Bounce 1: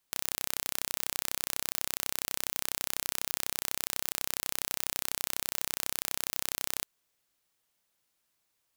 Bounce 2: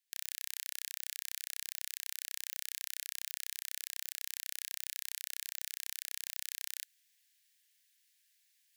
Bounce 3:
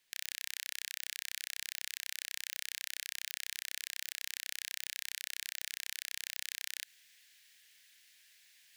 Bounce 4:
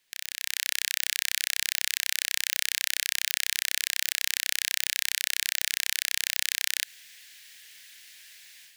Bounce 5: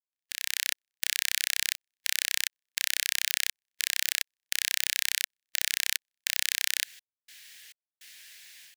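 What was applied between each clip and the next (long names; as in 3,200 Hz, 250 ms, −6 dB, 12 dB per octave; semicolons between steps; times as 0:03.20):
elliptic high-pass filter 1,700 Hz, stop band 40 dB; reversed playback; upward compression, threshold −54 dBFS; reversed playback; level −6.5 dB
high-shelf EQ 5,200 Hz −11.5 dB; brickwall limiter −31 dBFS, peak gain reduction 9 dB; level +16.5 dB
automatic gain control gain up to 10 dB; level +3.5 dB
gate pattern "..xxx..xxxxx" 103 BPM −60 dB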